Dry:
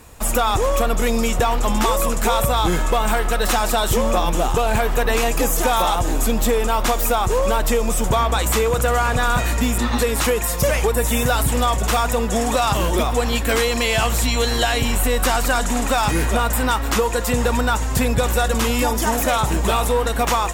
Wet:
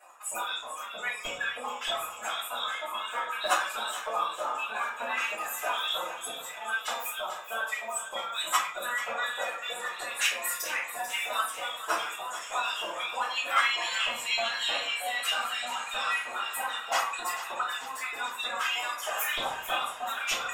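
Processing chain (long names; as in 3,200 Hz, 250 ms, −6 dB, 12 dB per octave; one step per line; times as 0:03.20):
expanding power law on the bin magnitudes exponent 2.1
0:06.27–0:08.77: parametric band 280 Hz −9.5 dB 1.4 octaves
gate on every frequency bin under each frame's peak −25 dB weak
floating-point word with a short mantissa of 6 bits
tape wow and flutter 24 cents
auto-filter high-pass saw up 3.2 Hz 560–3,500 Hz
feedback echo with a high-pass in the loop 441 ms, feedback 64%, high-pass 760 Hz, level −11 dB
rectangular room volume 51 cubic metres, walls mixed, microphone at 2.9 metres
expander for the loud parts 2.5 to 1, over −22 dBFS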